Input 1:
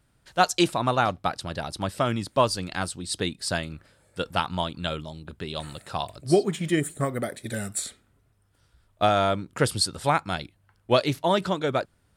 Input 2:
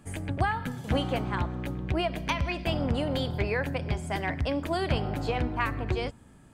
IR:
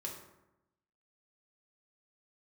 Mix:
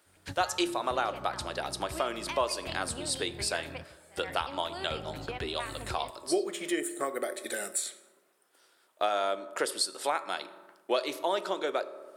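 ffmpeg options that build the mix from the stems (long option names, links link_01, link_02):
-filter_complex "[0:a]highpass=frequency=340:width=0.5412,highpass=frequency=340:width=1.3066,highshelf=frequency=8900:gain=4,volume=2.5dB,asplit=3[link_01][link_02][link_03];[link_02]volume=-7dB[link_04];[1:a]tiltshelf=frequency=970:gain=-3.5,volume=-5dB[link_05];[link_03]apad=whole_len=288333[link_06];[link_05][link_06]sidechaingate=range=-24dB:threshold=-49dB:ratio=16:detection=peak[link_07];[2:a]atrim=start_sample=2205[link_08];[link_04][link_08]afir=irnorm=-1:irlink=0[link_09];[link_01][link_07][link_09]amix=inputs=3:normalize=0,acompressor=threshold=-35dB:ratio=2"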